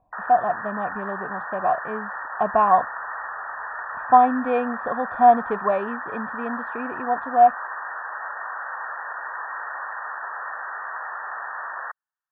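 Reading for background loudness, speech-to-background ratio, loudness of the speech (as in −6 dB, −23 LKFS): −31.5 LKFS, 10.5 dB, −21.0 LKFS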